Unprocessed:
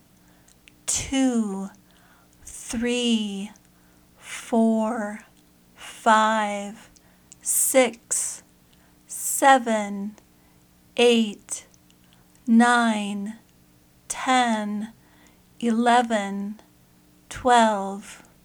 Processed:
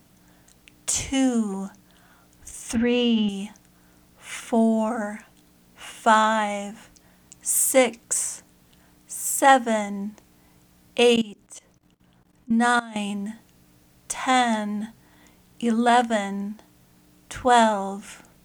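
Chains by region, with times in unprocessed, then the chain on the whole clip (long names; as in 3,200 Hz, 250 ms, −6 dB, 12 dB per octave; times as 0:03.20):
0:02.75–0:03.29: high-pass filter 49 Hz + high-frequency loss of the air 270 metres + envelope flattener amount 70%
0:11.16–0:12.96: output level in coarse steps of 19 dB + one half of a high-frequency compander decoder only
whole clip: no processing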